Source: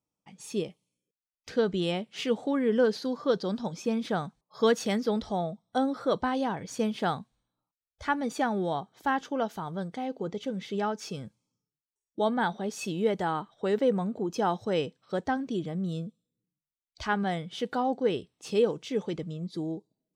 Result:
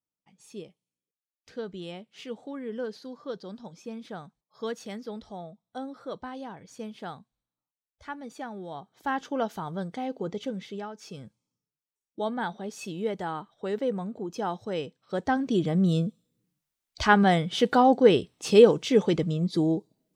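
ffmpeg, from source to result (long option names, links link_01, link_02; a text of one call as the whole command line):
ffmpeg -i in.wav -af "volume=20dB,afade=type=in:start_time=8.68:duration=0.69:silence=0.281838,afade=type=out:start_time=10.44:duration=0.45:silence=0.281838,afade=type=in:start_time=10.89:duration=0.32:silence=0.473151,afade=type=in:start_time=15.01:duration=0.82:silence=0.237137" out.wav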